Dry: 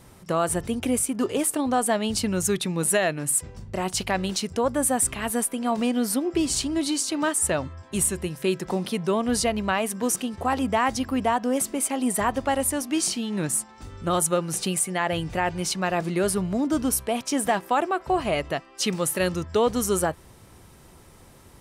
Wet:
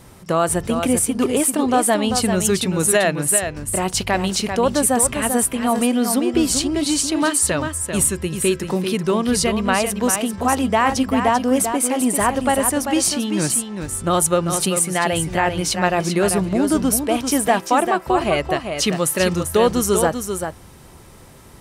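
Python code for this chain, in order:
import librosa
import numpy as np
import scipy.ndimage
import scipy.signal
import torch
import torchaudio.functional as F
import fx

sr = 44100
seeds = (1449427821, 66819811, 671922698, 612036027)

y = fx.peak_eq(x, sr, hz=720.0, db=-6.5, octaves=0.55, at=(7.27, 9.64))
y = y + 10.0 ** (-7.0 / 20.0) * np.pad(y, (int(392 * sr / 1000.0), 0))[:len(y)]
y = y * 10.0 ** (5.5 / 20.0)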